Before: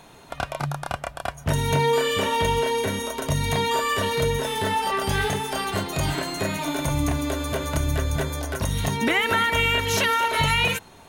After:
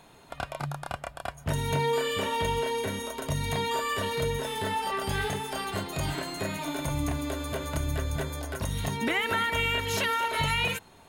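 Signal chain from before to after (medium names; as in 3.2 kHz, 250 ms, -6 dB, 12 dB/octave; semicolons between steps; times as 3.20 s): band-stop 5.9 kHz, Q 11; trim -6 dB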